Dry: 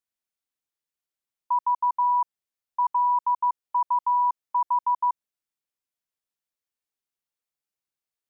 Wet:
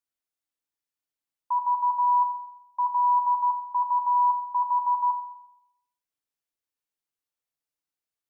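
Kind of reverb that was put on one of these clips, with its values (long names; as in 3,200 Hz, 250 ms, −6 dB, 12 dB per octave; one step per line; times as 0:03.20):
feedback delay network reverb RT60 0.81 s, low-frequency decay 0.95×, high-frequency decay 0.6×, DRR 5.5 dB
level −2.5 dB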